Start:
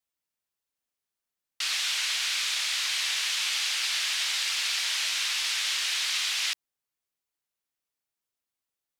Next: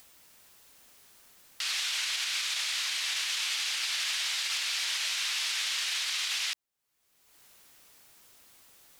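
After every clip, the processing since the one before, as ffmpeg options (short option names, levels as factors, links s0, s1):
-af "acompressor=mode=upward:threshold=0.02:ratio=2.5,alimiter=limit=0.0794:level=0:latency=1:release=55"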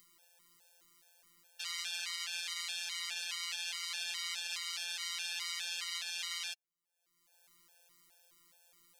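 -af "afftfilt=real='hypot(re,im)*cos(PI*b)':imag='0':win_size=1024:overlap=0.75,afftfilt=real='re*gt(sin(2*PI*2.4*pts/sr)*(1-2*mod(floor(b*sr/1024/460),2)),0)':imag='im*gt(sin(2*PI*2.4*pts/sr)*(1-2*mod(floor(b*sr/1024/460),2)),0)':win_size=1024:overlap=0.75,volume=0.794"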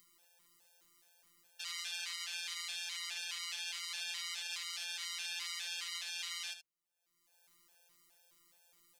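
-af "aecho=1:1:73:0.316,volume=0.75"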